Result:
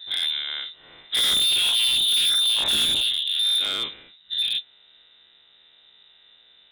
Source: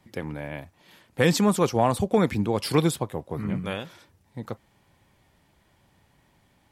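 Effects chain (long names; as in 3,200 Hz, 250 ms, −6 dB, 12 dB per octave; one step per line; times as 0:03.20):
every bin's largest magnitude spread in time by 120 ms
parametric band 240 Hz +14.5 dB 0.34 octaves
voice inversion scrambler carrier 3,800 Hz
gain into a clipping stage and back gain 19 dB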